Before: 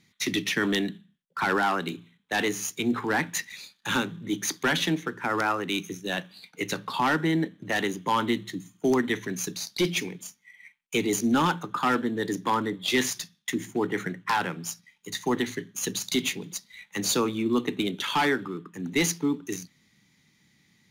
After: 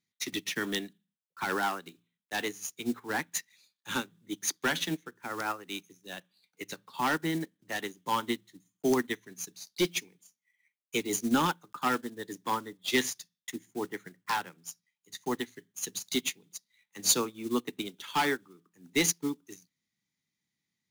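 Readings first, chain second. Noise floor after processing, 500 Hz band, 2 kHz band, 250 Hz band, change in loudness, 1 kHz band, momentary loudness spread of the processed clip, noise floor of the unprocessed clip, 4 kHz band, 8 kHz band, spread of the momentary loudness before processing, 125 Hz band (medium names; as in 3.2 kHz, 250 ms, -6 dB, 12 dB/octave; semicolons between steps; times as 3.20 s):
under -85 dBFS, -6.0 dB, -6.0 dB, -7.0 dB, -4.5 dB, -5.5 dB, 15 LU, -67 dBFS, -4.5 dB, -1.5 dB, 11 LU, -9.0 dB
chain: block-companded coder 5-bit; tone controls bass -2 dB, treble +5 dB; upward expansion 2.5:1, over -35 dBFS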